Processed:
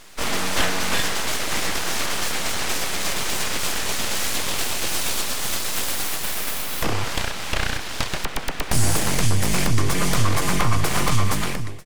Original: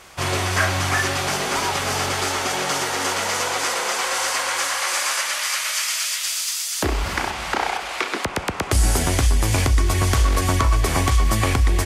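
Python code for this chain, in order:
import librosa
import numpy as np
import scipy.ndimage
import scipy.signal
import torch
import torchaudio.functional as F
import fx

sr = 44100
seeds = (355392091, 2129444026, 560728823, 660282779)

y = fx.fade_out_tail(x, sr, length_s=0.61)
y = np.abs(y)
y = y * librosa.db_to_amplitude(1.5)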